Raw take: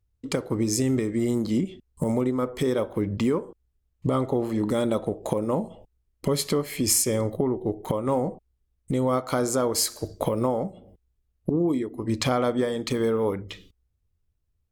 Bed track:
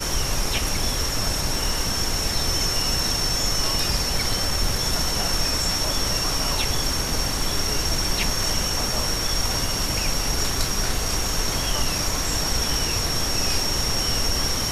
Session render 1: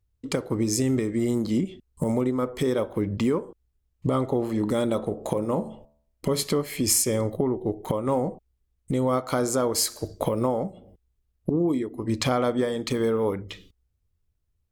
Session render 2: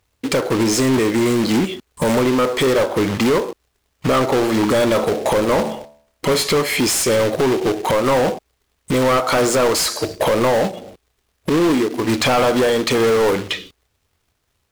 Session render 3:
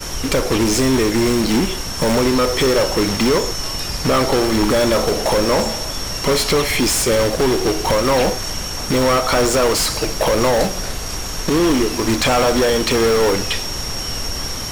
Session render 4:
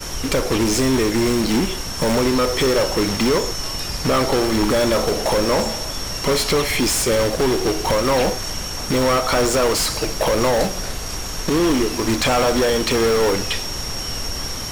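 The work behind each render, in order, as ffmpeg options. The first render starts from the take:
-filter_complex "[0:a]asettb=1/sr,asplit=3[a][b][c];[a]atrim=end=4.854[d];[b]atrim=start=4.85:end=6.43,asetpts=PTS-STARTPTS,afade=t=in:d=0.004:c=qsin,afade=t=out:st=1.576:d=0.004:c=qsin,bandreject=f=73.1:t=h:w=4,bandreject=f=146.2:t=h:w=4,bandreject=f=219.3:t=h:w=4,bandreject=f=292.4:t=h:w=4,bandreject=f=365.5:t=h:w=4,bandreject=f=438.6:t=h:w=4,bandreject=f=511.7:t=h:w=4,bandreject=f=584.8:t=h:w=4,bandreject=f=657.9:t=h:w=4,bandreject=f=731:t=h:w=4,bandreject=f=804.1:t=h:w=4,bandreject=f=877.2:t=h:w=4,bandreject=f=950.3:t=h:w=4,bandreject=f=1.0234k:t=h:w=4,bandreject=f=1.0965k:t=h:w=4,bandreject=f=1.1696k:t=h:w=4,bandreject=f=1.2427k:t=h:w=4,bandreject=f=1.3158k:t=h:w=4,bandreject=f=1.3889k:t=h:w=4,bandreject=f=1.462k:t=h:w=4,bandreject=f=1.5351k:t=h:w=4,bandreject=f=1.6082k:t=h:w=4,bandreject=f=1.6813k:t=h:w=4,bandreject=f=1.7544k:t=h:w=4,bandreject=f=1.8275k:t=h:w=4[e];[c]atrim=start=6.426[f];[d][e]acrossfade=d=0.004:c1=hsin:c2=qsin[g];[g][f]acrossfade=d=0.004:c1=qsin:c2=hsin"
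-filter_complex "[0:a]acrusher=bits=4:mode=log:mix=0:aa=0.000001,asplit=2[a][b];[b]highpass=f=720:p=1,volume=28dB,asoftclip=type=tanh:threshold=-7.5dB[c];[a][c]amix=inputs=2:normalize=0,lowpass=f=4.2k:p=1,volume=-6dB"
-filter_complex "[1:a]volume=-1.5dB[a];[0:a][a]amix=inputs=2:normalize=0"
-af "volume=-2dB"

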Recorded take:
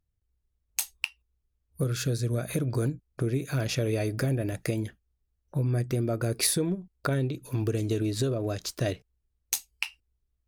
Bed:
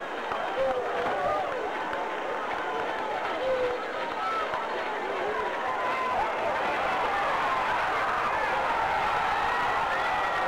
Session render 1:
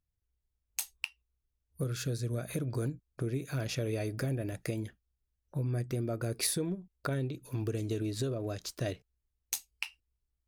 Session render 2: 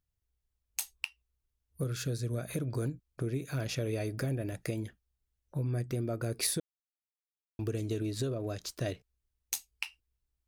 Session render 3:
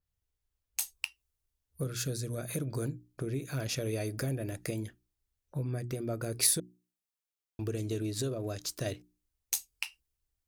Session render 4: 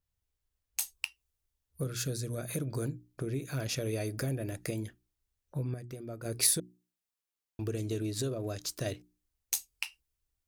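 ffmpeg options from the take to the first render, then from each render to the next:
-af "volume=-6dB"
-filter_complex "[0:a]asplit=3[a][b][c];[a]atrim=end=6.6,asetpts=PTS-STARTPTS,afade=t=out:st=6.596:d=0.004:c=hsin[d];[b]atrim=start=6.6:end=7.59,asetpts=PTS-STARTPTS,volume=0[e];[c]atrim=start=7.59,asetpts=PTS-STARTPTS,afade=t=in:d=0.004:c=hsin[f];[d][e][f]concat=n=3:v=0:a=1"
-af "bandreject=f=60:t=h:w=6,bandreject=f=120:t=h:w=6,bandreject=f=180:t=h:w=6,bandreject=f=240:t=h:w=6,bandreject=f=300:t=h:w=6,bandreject=f=360:t=h:w=6,adynamicequalizer=threshold=0.00251:dfrequency=4700:dqfactor=0.7:tfrequency=4700:tqfactor=0.7:attack=5:release=100:ratio=0.375:range=3.5:mode=boostabove:tftype=highshelf"
-filter_complex "[0:a]asplit=3[a][b][c];[a]atrim=end=5.742[d];[b]atrim=start=5.738:end=6.252,asetpts=PTS-STARTPTS,volume=-7dB[e];[c]atrim=start=6.248[f];[d][e]acrossfade=d=0.004:c1=hsin:c2=hsin[g];[g][f]acrossfade=d=0.004:c1=hsin:c2=hsin"

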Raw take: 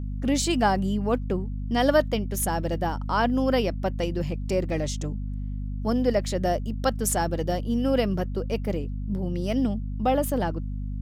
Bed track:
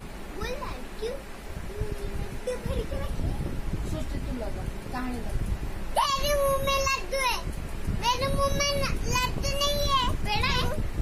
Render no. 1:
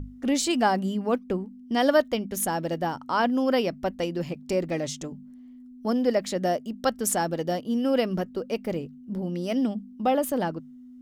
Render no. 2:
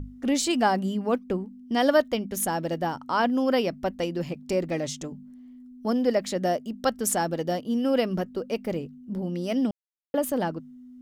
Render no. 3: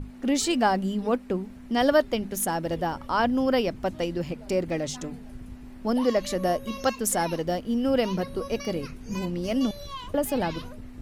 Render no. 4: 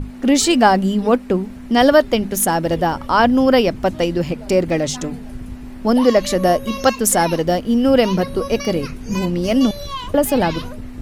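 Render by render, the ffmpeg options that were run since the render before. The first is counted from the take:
-af "bandreject=f=50:t=h:w=6,bandreject=f=100:t=h:w=6,bandreject=f=150:t=h:w=6,bandreject=f=200:t=h:w=6"
-filter_complex "[0:a]asplit=3[a][b][c];[a]atrim=end=9.71,asetpts=PTS-STARTPTS,afade=t=out:st=9.706:d=0.004:c=hsin[d];[b]atrim=start=9.71:end=10.14,asetpts=PTS-STARTPTS,volume=0[e];[c]atrim=start=10.14,asetpts=PTS-STARTPTS,afade=t=in:d=0.004:c=hsin[f];[d][e][f]concat=n=3:v=0:a=1"
-filter_complex "[1:a]volume=-13.5dB[a];[0:a][a]amix=inputs=2:normalize=0"
-af "volume=10dB,alimiter=limit=-1dB:level=0:latency=1"

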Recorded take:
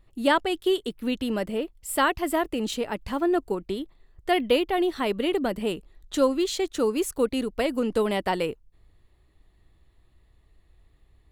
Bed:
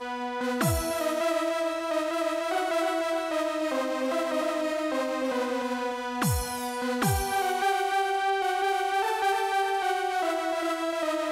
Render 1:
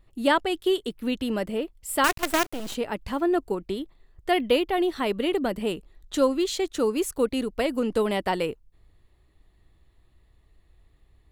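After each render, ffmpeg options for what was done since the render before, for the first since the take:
-filter_complex "[0:a]asettb=1/sr,asplit=3[a][b][c];[a]atrim=end=2.044[d];[b]atrim=start=2.04:end=2.75,asetpts=PTS-STARTPTS,afade=t=in:d=0.004:c=qsin,afade=t=out:st=0.706:d=0.004:c=qsin,acrusher=bits=4:dc=4:mix=0:aa=0.000001[e];[c]atrim=start=2.746[f];[d][e]acrossfade=d=0.004:c1=hsin:c2=qsin[g];[g][f]acrossfade=d=0.004:c1=qsin:c2=hsin"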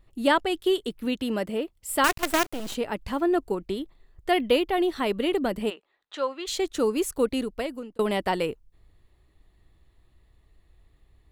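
-filter_complex "[0:a]asettb=1/sr,asplit=3[a][b][c];[a]atrim=end=1.054[d];[b]atrim=start=1.05:end=1.88,asetpts=PTS-STARTPTS,afade=t=in:d=0.004:c=qsin,afade=t=out:st=0.826:d=0.004:c=qsin,highpass=f=89:p=1[e];[c]atrim=start=1.876[f];[d][e]acrossfade=d=0.004:c1=hsin:c2=qsin[g];[g][f]acrossfade=d=0.004:c1=qsin:c2=hsin,asplit=3[h][i][j];[h]afade=t=out:st=5.69:d=0.02[k];[i]highpass=720,lowpass=3.1k,afade=t=in:st=5.69:d=0.02,afade=t=out:st=6.46:d=0.02[l];[j]afade=t=in:st=6.46:d=0.02[m];[k][l][m]amix=inputs=3:normalize=0,asplit=2[n][o];[n]atrim=end=7.99,asetpts=PTS-STARTPTS,afade=t=out:st=7.35:d=0.64[p];[o]atrim=start=7.99,asetpts=PTS-STARTPTS,afade=t=in:d=0.004:c=hsin[q];[p][q]concat=n=2:v=0:a=1"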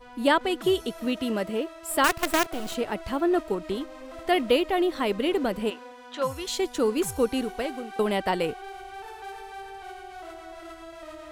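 -filter_complex "[1:a]volume=-14dB[a];[0:a][a]amix=inputs=2:normalize=0"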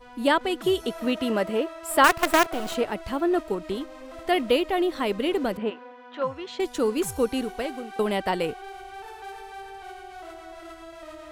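-filter_complex "[0:a]asettb=1/sr,asplit=3[a][b][c];[a]atrim=end=0.834[d];[b]atrim=start=0.83:end=2.86,asetpts=PTS-STARTPTS,afade=t=in:d=0.004:c=qsin,afade=t=out:st=2.026:d=0.004:c=qsin,equalizer=f=980:t=o:w=2.8:g=5.5[e];[c]atrim=start=2.856[f];[d][e]acrossfade=d=0.004:c1=hsin:c2=qsin[g];[g][f]acrossfade=d=0.004:c1=qsin:c2=hsin,asettb=1/sr,asplit=3[h][i][j];[h]atrim=end=5.574[k];[i]atrim=start=5.57:end=6.6,asetpts=PTS-STARTPTS,afade=t=in:d=0.004:c=qsin,afade=t=out:st=1.026:d=0.004:c=qsin,highpass=130,lowpass=2.5k[l];[j]atrim=start=6.596[m];[k][l]acrossfade=d=0.004:c1=hsin:c2=qsin[n];[n][m]acrossfade=d=0.004:c1=qsin:c2=hsin"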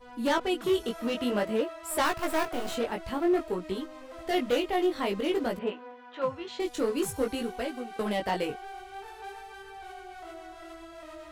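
-af "asoftclip=type=hard:threshold=-19dB,flanger=delay=16:depth=6:speed=0.52"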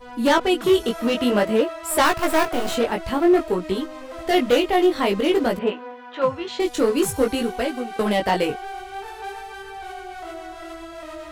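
-af "volume=9dB"

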